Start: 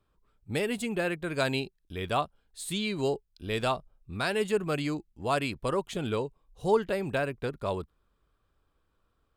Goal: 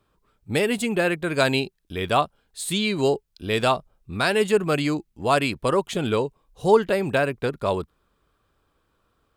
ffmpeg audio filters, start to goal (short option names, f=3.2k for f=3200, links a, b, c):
-af "lowshelf=f=61:g=-10.5,volume=8dB"